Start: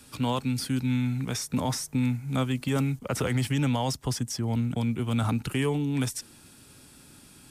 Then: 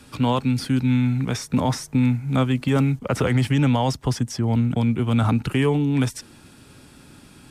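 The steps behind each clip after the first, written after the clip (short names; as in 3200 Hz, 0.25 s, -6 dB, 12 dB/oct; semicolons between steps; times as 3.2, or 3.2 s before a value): high shelf 5300 Hz -12 dB; gain +7 dB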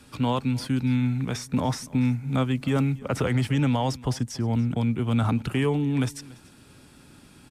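echo 0.286 s -21.5 dB; gain -4 dB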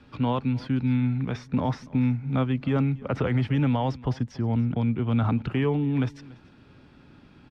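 air absorption 250 m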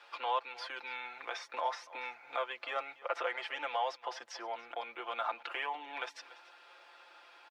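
inverse Chebyshev high-pass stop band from 180 Hz, stop band 60 dB; comb 5.8 ms, depth 72%; in parallel at +3 dB: compressor, threshold -43 dBFS, peak gain reduction 17.5 dB; on the sum: gain -5.5 dB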